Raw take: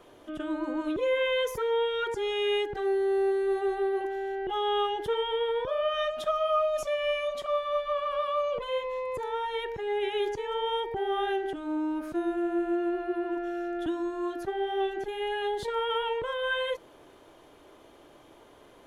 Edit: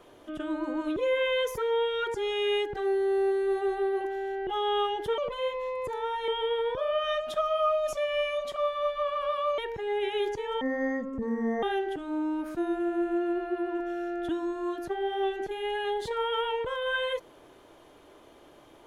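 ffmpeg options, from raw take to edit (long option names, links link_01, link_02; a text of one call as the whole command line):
ffmpeg -i in.wav -filter_complex "[0:a]asplit=6[link_01][link_02][link_03][link_04][link_05][link_06];[link_01]atrim=end=5.182[link_07];[link_02]atrim=start=8.478:end=9.582[link_08];[link_03]atrim=start=5.178:end=8.482[link_09];[link_04]atrim=start=9.578:end=10.614[link_10];[link_05]atrim=start=10.61:end=11.2,asetpts=PTS-STARTPTS,asetrate=25578,aresample=44100,atrim=end_sample=44860,asetpts=PTS-STARTPTS[link_11];[link_06]atrim=start=11.196[link_12];[link_07][link_08]acrossfade=duration=0.004:curve1=hsin:curve2=hsin[link_13];[link_13][link_09]acrossfade=duration=0.004:curve1=hsin:curve2=hsin[link_14];[link_14][link_10]acrossfade=duration=0.004:curve1=hsin:curve2=hsin[link_15];[link_15][link_11]acrossfade=duration=0.004:curve1=hsin:curve2=hsin[link_16];[link_16][link_12]acrossfade=duration=0.004:curve1=hsin:curve2=hsin" out.wav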